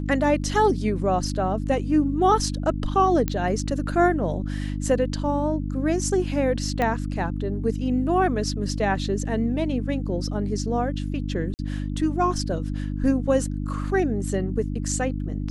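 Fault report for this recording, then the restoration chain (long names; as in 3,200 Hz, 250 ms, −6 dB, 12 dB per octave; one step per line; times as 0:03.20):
mains hum 50 Hz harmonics 6 −28 dBFS
0:03.28: click −11 dBFS
0:06.82: click −12 dBFS
0:11.54–0:11.59: drop-out 49 ms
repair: click removal
hum removal 50 Hz, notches 6
repair the gap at 0:11.54, 49 ms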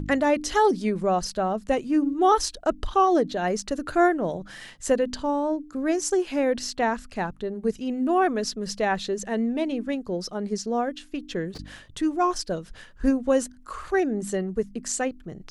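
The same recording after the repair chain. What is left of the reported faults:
0:06.82: click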